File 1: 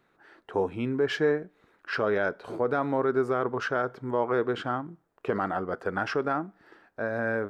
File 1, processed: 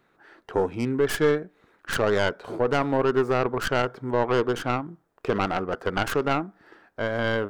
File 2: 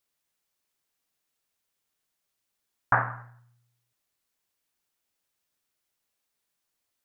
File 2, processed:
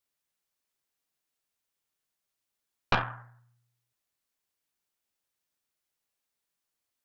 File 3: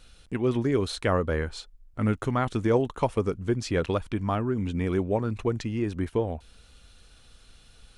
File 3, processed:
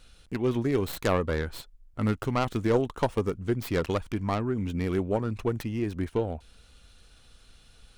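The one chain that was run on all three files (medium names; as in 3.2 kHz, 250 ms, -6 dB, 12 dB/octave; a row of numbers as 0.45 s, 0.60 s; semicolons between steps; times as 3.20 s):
tracing distortion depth 0.25 ms; peak normalisation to -12 dBFS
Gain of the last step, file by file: +3.0 dB, -4.5 dB, -1.5 dB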